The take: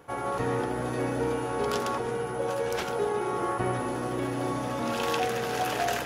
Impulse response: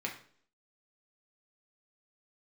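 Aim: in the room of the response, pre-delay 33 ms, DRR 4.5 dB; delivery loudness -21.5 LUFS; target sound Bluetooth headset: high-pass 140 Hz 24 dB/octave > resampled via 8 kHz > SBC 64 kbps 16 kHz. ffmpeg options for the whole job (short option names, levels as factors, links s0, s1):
-filter_complex "[0:a]asplit=2[s0][s1];[1:a]atrim=start_sample=2205,adelay=33[s2];[s1][s2]afir=irnorm=-1:irlink=0,volume=0.422[s3];[s0][s3]amix=inputs=2:normalize=0,highpass=f=140:w=0.5412,highpass=f=140:w=1.3066,aresample=8000,aresample=44100,volume=2.24" -ar 16000 -c:a sbc -b:a 64k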